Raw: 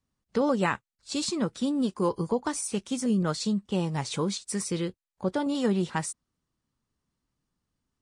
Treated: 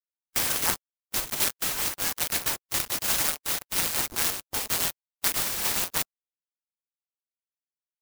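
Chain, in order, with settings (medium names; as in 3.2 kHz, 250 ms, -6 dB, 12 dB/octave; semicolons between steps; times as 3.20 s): hum notches 50/100/150/200/250/300/350/400/450 Hz; LPC vocoder at 8 kHz pitch kept; dynamic bell 420 Hz, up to -5 dB, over -42 dBFS, Q 1.8; gain riding within 4 dB 0.5 s; flange 0.62 Hz, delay 6 ms, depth 7 ms, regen +53%; word length cut 6-bit, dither none; frequency inversion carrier 2.7 kHz; harmonic-percussive split percussive +9 dB; sampling jitter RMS 0.15 ms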